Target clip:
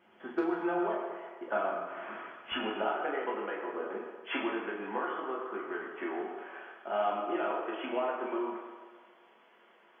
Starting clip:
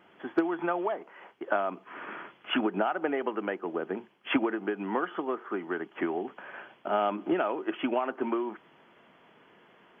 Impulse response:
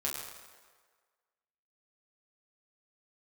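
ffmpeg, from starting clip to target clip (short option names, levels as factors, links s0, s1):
-filter_complex "[0:a]asetnsamples=n=441:p=0,asendcmd='2.52 highpass f 330',highpass=59[s0];[1:a]atrim=start_sample=2205[s1];[s0][s1]afir=irnorm=-1:irlink=0,volume=0.473"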